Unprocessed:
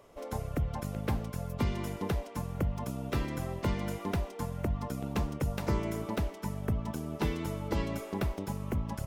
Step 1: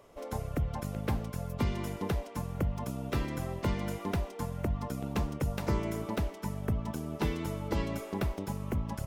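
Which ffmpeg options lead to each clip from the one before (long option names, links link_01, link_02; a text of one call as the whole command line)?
ffmpeg -i in.wav -af anull out.wav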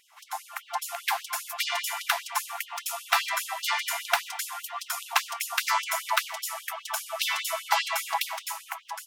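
ffmpeg -i in.wav -af "dynaudnorm=framelen=170:gausssize=9:maxgain=10dB,afftfilt=real='re*gte(b*sr/1024,620*pow(2900/620,0.5+0.5*sin(2*PI*5*pts/sr)))':imag='im*gte(b*sr/1024,620*pow(2900/620,0.5+0.5*sin(2*PI*5*pts/sr)))':win_size=1024:overlap=0.75,volume=7.5dB" out.wav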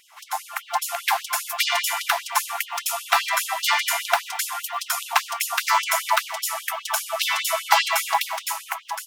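ffmpeg -i in.wav -filter_complex "[0:a]acrossover=split=1200[link_01][link_02];[link_01]acrusher=bits=5:mode=log:mix=0:aa=0.000001[link_03];[link_02]alimiter=limit=-14.5dB:level=0:latency=1:release=286[link_04];[link_03][link_04]amix=inputs=2:normalize=0,volume=7dB" out.wav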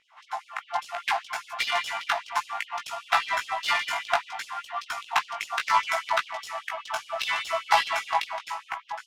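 ffmpeg -i in.wav -af "flanger=delay=16.5:depth=2.1:speed=0.66,adynamicsmooth=sensitivity=1.5:basefreq=2800" out.wav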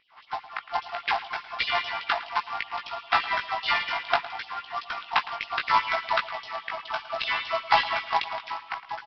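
ffmpeg -i in.wav -af "aresample=11025,acrusher=bits=3:mode=log:mix=0:aa=0.000001,aresample=44100,aecho=1:1:110:0.158" out.wav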